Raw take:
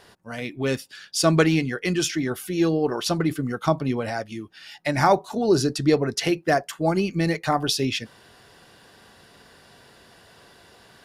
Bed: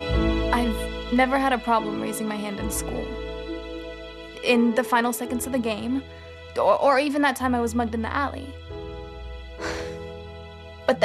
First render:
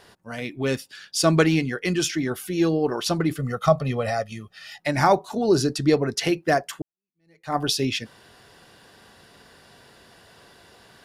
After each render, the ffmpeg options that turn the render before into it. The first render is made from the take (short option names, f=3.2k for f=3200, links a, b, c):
-filter_complex "[0:a]asettb=1/sr,asplit=3[a][b][c];[a]atrim=end=3.374[d];[b]atrim=start=3.37:end=4.8,asetpts=PTS-STARTPTS,afade=t=in:d=0.004:c=qsin,afade=t=out:st=1.426:d=0.004:c=qsin,aecho=1:1:1.6:0.81,atrim=end_sample=63063[e];[c]atrim=start=4.796[f];[d][e]acrossfade=d=0.004:c1=hsin:c2=qsin[g];[g][f]acrossfade=d=0.004:c1=qsin:c2=hsin,asplit=2[h][i];[h]atrim=end=6.82,asetpts=PTS-STARTPTS,afade=t=out:st=6.816:d=0.004:c=hsin[j];[i]atrim=start=6.82,asetpts=PTS-STARTPTS,afade=t=in:d=0.74:c=exp[k];[j][k]concat=n=2:v=0:a=1"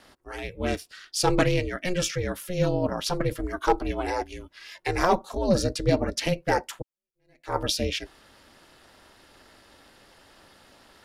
-filter_complex "[0:a]acrossover=split=120|2200[a][b][c];[b]volume=10.5dB,asoftclip=hard,volume=-10.5dB[d];[a][d][c]amix=inputs=3:normalize=0,aeval=exprs='val(0)*sin(2*PI*180*n/s)':c=same"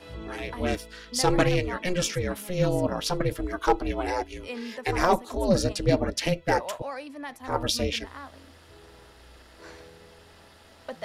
-filter_complex "[1:a]volume=-17dB[a];[0:a][a]amix=inputs=2:normalize=0"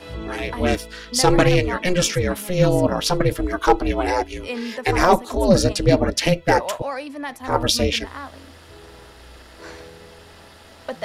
-af "volume=7.5dB,alimiter=limit=-3dB:level=0:latency=1"